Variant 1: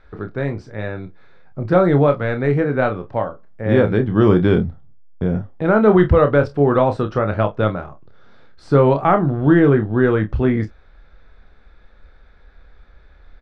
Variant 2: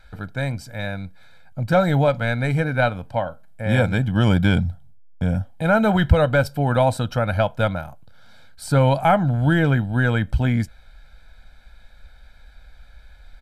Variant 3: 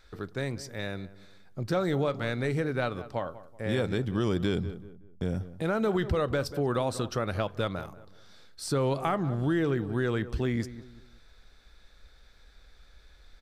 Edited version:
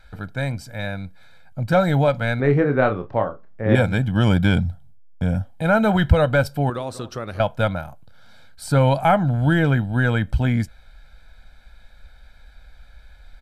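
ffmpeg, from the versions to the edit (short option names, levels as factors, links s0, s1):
-filter_complex "[1:a]asplit=3[s0][s1][s2];[s0]atrim=end=2.402[s3];[0:a]atrim=start=2.398:end=3.752[s4];[s1]atrim=start=3.748:end=6.702[s5];[2:a]atrim=start=6.698:end=7.402[s6];[s2]atrim=start=7.398[s7];[s3][s4]acrossfade=d=0.004:c1=hsin:c2=hsin[s8];[s8][s5]acrossfade=d=0.004:c1=hsin:c2=hsin[s9];[s9][s6]acrossfade=d=0.004:c1=hsin:c2=hsin[s10];[s10][s7]acrossfade=d=0.004:c1=hsin:c2=hsin"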